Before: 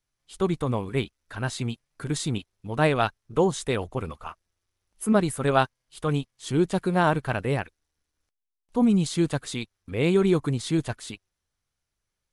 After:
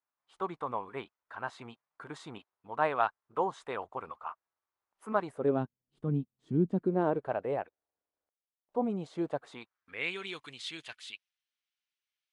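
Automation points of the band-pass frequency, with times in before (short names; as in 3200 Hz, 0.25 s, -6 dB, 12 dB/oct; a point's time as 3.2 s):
band-pass, Q 1.9
5.21 s 1000 Hz
5.62 s 210 Hz
6.64 s 210 Hz
7.37 s 640 Hz
9.35 s 640 Hz
10.23 s 2900 Hz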